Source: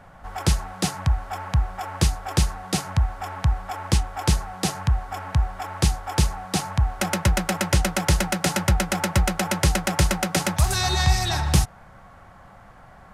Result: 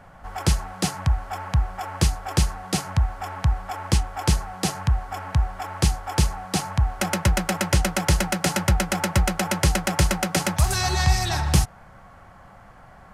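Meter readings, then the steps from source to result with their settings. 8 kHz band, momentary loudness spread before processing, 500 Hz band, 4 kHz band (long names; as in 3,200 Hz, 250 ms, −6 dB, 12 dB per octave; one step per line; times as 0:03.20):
0.0 dB, 6 LU, 0.0 dB, −1.0 dB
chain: notch filter 3,700 Hz, Q 23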